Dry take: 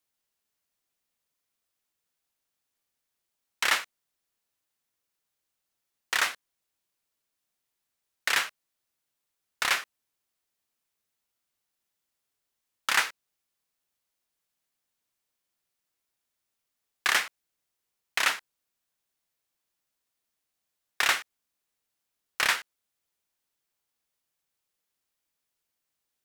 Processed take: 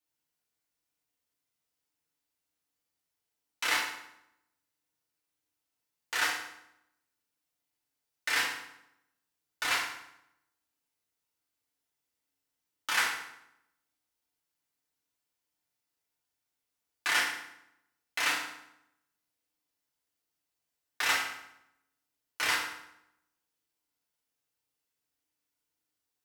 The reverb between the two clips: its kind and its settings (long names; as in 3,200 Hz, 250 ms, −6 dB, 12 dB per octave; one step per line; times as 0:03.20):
feedback delay network reverb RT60 0.81 s, low-frequency decay 1.2×, high-frequency decay 0.8×, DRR −5.5 dB
level −9 dB